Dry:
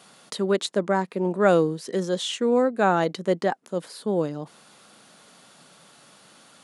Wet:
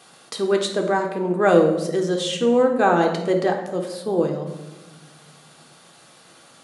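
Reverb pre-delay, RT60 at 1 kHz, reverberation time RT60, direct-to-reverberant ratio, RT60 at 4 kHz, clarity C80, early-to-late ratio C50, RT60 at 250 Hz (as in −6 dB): 3 ms, 0.95 s, 1.1 s, 2.0 dB, 0.70 s, 9.0 dB, 7.0 dB, 1.7 s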